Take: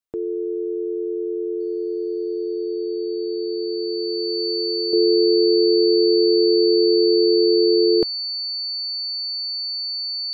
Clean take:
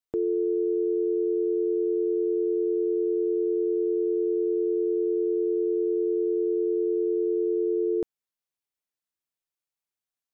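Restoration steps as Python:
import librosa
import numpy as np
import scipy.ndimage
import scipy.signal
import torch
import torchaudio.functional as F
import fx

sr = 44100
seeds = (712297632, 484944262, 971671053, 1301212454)

y = fx.notch(x, sr, hz=4500.0, q=30.0)
y = fx.fix_level(y, sr, at_s=4.93, step_db=-9.0)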